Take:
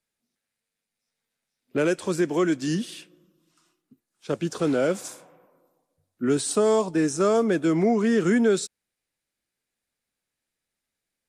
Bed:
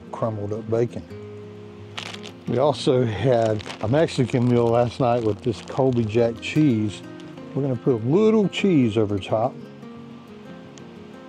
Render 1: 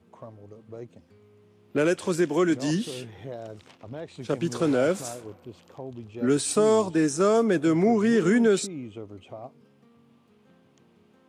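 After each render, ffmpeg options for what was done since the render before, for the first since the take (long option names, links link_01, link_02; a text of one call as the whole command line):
ffmpeg -i in.wav -i bed.wav -filter_complex "[1:a]volume=-19dB[link_01];[0:a][link_01]amix=inputs=2:normalize=0" out.wav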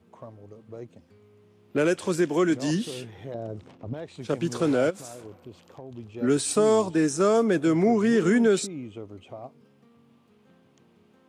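ffmpeg -i in.wav -filter_complex "[0:a]asettb=1/sr,asplit=3[link_01][link_02][link_03];[link_01]atrim=end=3.344[link_04];[link_02]atrim=start=3.34:end=3.94,asetpts=PTS-STARTPTS,afade=type=in:duration=0.004:curve=qsin,afade=type=out:start_time=0.596:duration=0.004:curve=qsin,tiltshelf=frequency=940:gain=8[link_05];[link_03]atrim=start=3.936[link_06];[link_04][link_05]acrossfade=duration=0.004:curve1=hsin:curve2=qsin[link_07];[link_07][link_06]acrossfade=duration=0.004:curve1=qsin:curve2=hsin,asplit=3[link_08][link_09][link_10];[link_08]afade=type=out:start_time=4.89:duration=0.02[link_11];[link_09]acompressor=threshold=-36dB:ratio=8:attack=3.2:release=140:knee=1:detection=peak,afade=type=in:start_time=4.89:duration=0.02,afade=type=out:start_time=5.96:duration=0.02[link_12];[link_10]afade=type=in:start_time=5.96:duration=0.02[link_13];[link_11][link_12][link_13]amix=inputs=3:normalize=0" out.wav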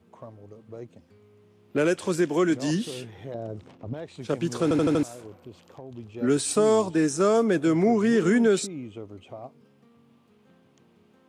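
ffmpeg -i in.wav -filter_complex "[0:a]asplit=6[link_01][link_02][link_03][link_04][link_05][link_06];[link_01]atrim=end=4.712[link_07];[link_02]atrim=start=4.628:end=4.712[link_08];[link_03]atrim=start=4.628:end=4.712[link_09];[link_04]atrim=start=4.628:end=4.712[link_10];[link_05]atrim=start=4.628:end=4.712[link_11];[link_06]atrim=start=5.028[link_12];[link_07][link_08]acrossfade=duration=0.004:curve1=hsin:curve2=hsin[link_13];[link_13][link_09]acrossfade=duration=0.004:curve1=hsin:curve2=hsin[link_14];[link_14][link_10]acrossfade=duration=0.004:curve1=hsin:curve2=hsin[link_15];[link_15][link_11]acrossfade=duration=0.004:curve1=hsin:curve2=hsin[link_16];[link_16][link_12]acrossfade=duration=0.004:curve1=hsin:curve2=hsin" out.wav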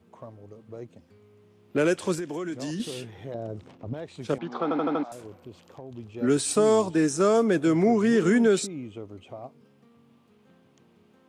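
ffmpeg -i in.wav -filter_complex "[0:a]asettb=1/sr,asplit=3[link_01][link_02][link_03];[link_01]atrim=end=2.144[link_04];[link_02]atrim=start=2.14:end=2.8,asetpts=PTS-STARTPTS,afade=type=in:duration=0.004:curve=qsin,afade=type=out:start_time=0.656:duration=0.004:curve=qsin,acompressor=threshold=-29dB:ratio=6:attack=3.2:release=140:knee=1:detection=peak[link_05];[link_03]atrim=start=2.796[link_06];[link_04][link_05]acrossfade=duration=0.004:curve1=hsin:curve2=qsin[link_07];[link_07][link_06]acrossfade=duration=0.004:curve1=qsin:curve2=hsin,asettb=1/sr,asplit=3[link_08][link_09][link_10];[link_08]atrim=end=4.384[link_11];[link_09]atrim=start=4.38:end=5.12,asetpts=PTS-STARTPTS,afade=type=in:duration=0.004:curve=qsin,afade=type=out:start_time=0.736:duration=0.004:curve=qsin,highpass=frequency=220:width=0.5412,highpass=frequency=220:width=1.3066,equalizer=frequency=330:width_type=q:width=4:gain=-7,equalizer=frequency=480:width_type=q:width=4:gain=-5,equalizer=frequency=790:width_type=q:width=4:gain=10,equalizer=frequency=1200:width_type=q:width=4:gain=6,equalizer=frequency=1700:width_type=q:width=4:gain=-4,equalizer=frequency=2700:width_type=q:width=4:gain=-9,lowpass=frequency=3300:width=0.5412,lowpass=frequency=3300:width=1.3066[link_12];[link_10]atrim=start=5.116[link_13];[link_11][link_12]acrossfade=duration=0.004:curve1=hsin:curve2=qsin[link_14];[link_14][link_13]acrossfade=duration=0.004:curve1=qsin:curve2=hsin" out.wav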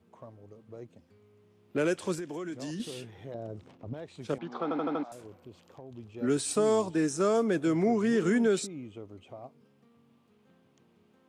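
ffmpeg -i in.wav -af "volume=-5dB" out.wav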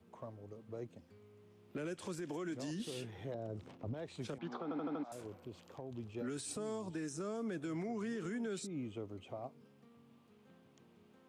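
ffmpeg -i in.wav -filter_complex "[0:a]acrossover=split=290|710[link_01][link_02][link_03];[link_01]acompressor=threshold=-35dB:ratio=4[link_04];[link_02]acompressor=threshold=-40dB:ratio=4[link_05];[link_03]acompressor=threshold=-42dB:ratio=4[link_06];[link_04][link_05][link_06]amix=inputs=3:normalize=0,alimiter=level_in=9dB:limit=-24dB:level=0:latency=1:release=192,volume=-9dB" out.wav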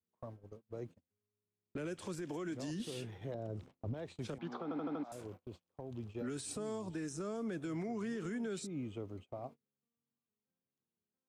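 ffmpeg -i in.wav -af "agate=range=-32dB:threshold=-50dB:ratio=16:detection=peak,lowshelf=frequency=74:gain=8.5" out.wav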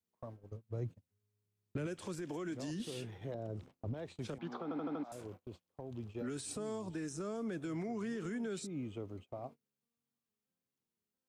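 ffmpeg -i in.wav -filter_complex "[0:a]asettb=1/sr,asplit=3[link_01][link_02][link_03];[link_01]atrim=end=0.514[link_04];[link_02]atrim=start=0.51:end=1.87,asetpts=PTS-STARTPTS,afade=type=in:duration=0.004:curve=qsin,afade=type=out:start_time=1.356:duration=0.004:curve=qsin,equalizer=frequency=110:width=1.5:gain=12.5[link_05];[link_03]atrim=start=1.866[link_06];[link_04][link_05]acrossfade=duration=0.004:curve1=hsin:curve2=qsin[link_07];[link_07][link_06]acrossfade=duration=0.004:curve1=qsin:curve2=hsin" out.wav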